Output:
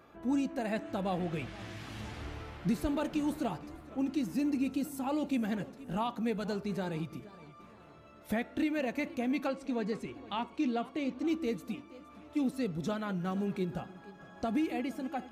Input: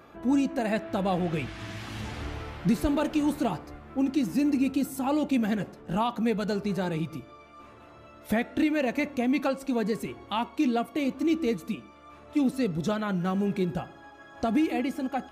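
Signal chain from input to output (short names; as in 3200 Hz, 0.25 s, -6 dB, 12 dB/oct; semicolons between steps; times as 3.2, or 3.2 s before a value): 9.47–11.27 LPF 6700 Hz 12 dB/oct; warbling echo 0.469 s, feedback 47%, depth 151 cents, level -19 dB; gain -6.5 dB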